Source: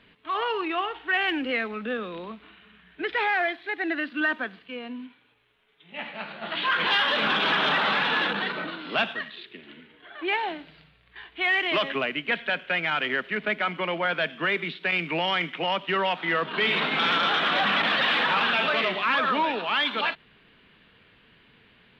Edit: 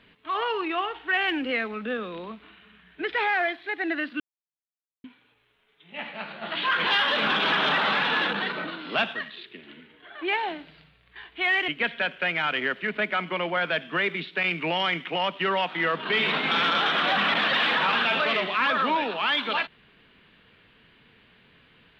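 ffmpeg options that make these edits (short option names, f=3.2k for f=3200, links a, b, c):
-filter_complex "[0:a]asplit=4[a][b][c][d];[a]atrim=end=4.2,asetpts=PTS-STARTPTS,afade=t=out:st=4.196:d=0.004:c=hsin[e];[b]atrim=start=4.2:end=5.04,asetpts=PTS-STARTPTS,volume=0[f];[c]atrim=start=5.04:end=11.682,asetpts=PTS-STARTPTS,afade=t=in:d=0.004:c=hsin[g];[d]atrim=start=12.158[h];[e][f][g]concat=n=3:v=0:a=1[i];[i][h]acrossfade=d=0.004:c1=hsin:c2=hsin"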